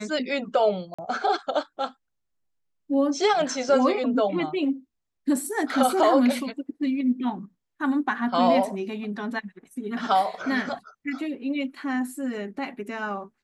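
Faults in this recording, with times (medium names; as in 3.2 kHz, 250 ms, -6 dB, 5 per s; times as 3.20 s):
0.94–0.98 s: dropout 45 ms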